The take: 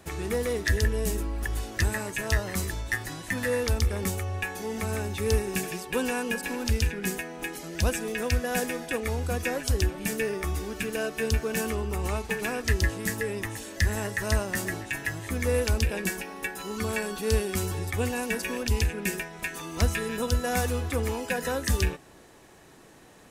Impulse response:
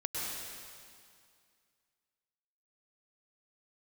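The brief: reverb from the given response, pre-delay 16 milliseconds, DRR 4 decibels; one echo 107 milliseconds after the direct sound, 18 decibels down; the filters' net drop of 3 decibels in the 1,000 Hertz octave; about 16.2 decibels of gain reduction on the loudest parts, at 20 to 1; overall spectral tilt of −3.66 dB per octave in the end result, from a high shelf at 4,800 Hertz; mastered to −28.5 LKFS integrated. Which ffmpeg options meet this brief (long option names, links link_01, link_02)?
-filter_complex "[0:a]equalizer=frequency=1000:width_type=o:gain=-4.5,highshelf=frequency=4800:gain=7,acompressor=threshold=-35dB:ratio=20,aecho=1:1:107:0.126,asplit=2[link_01][link_02];[1:a]atrim=start_sample=2205,adelay=16[link_03];[link_02][link_03]afir=irnorm=-1:irlink=0,volume=-8.5dB[link_04];[link_01][link_04]amix=inputs=2:normalize=0,volume=9dB"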